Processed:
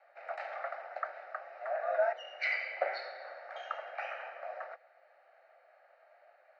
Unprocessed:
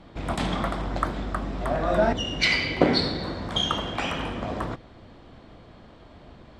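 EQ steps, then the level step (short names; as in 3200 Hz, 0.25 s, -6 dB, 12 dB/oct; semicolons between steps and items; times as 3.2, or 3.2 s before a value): steep high-pass 470 Hz 72 dB/oct; LPF 3700 Hz 24 dB/oct; fixed phaser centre 680 Hz, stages 8; -6.5 dB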